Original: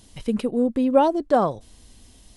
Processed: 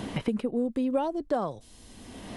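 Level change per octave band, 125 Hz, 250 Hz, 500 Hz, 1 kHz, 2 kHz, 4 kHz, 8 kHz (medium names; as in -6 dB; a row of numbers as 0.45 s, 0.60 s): -2.0 dB, -6.5 dB, -9.0 dB, -10.5 dB, -5.0 dB, -3.5 dB, no reading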